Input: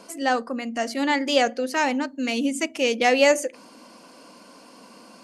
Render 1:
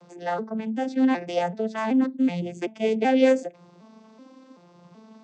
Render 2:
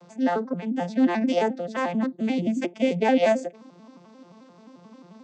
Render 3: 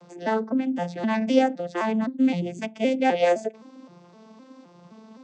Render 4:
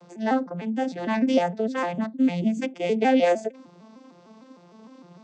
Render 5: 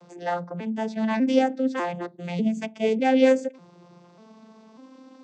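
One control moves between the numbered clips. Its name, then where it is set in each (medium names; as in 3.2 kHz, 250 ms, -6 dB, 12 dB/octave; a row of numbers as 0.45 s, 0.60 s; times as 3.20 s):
vocoder on a broken chord, a note every: 380 ms, 88 ms, 258 ms, 152 ms, 596 ms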